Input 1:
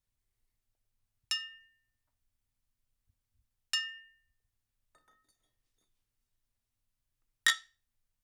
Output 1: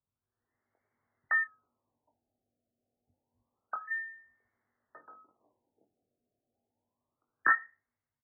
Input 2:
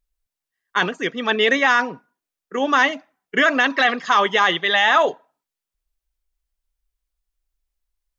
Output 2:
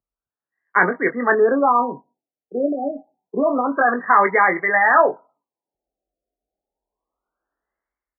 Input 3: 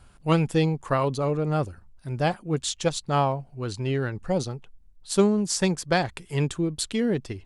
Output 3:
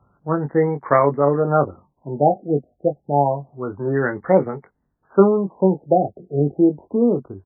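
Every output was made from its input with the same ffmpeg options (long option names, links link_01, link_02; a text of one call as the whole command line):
ffmpeg -i in.wav -filter_complex "[0:a]highpass=100,lowpass=3000,asplit=2[link_01][link_02];[link_02]adelay=21,volume=-7dB[link_03];[link_01][link_03]amix=inputs=2:normalize=0,acrossover=split=230[link_04][link_05];[link_05]dynaudnorm=framelen=100:gausssize=11:maxgain=16dB[link_06];[link_04][link_06]amix=inputs=2:normalize=0,afftfilt=real='re*lt(b*sr/1024,760*pow(2300/760,0.5+0.5*sin(2*PI*0.28*pts/sr)))':imag='im*lt(b*sr/1024,760*pow(2300/760,0.5+0.5*sin(2*PI*0.28*pts/sr)))':win_size=1024:overlap=0.75,volume=-1dB" out.wav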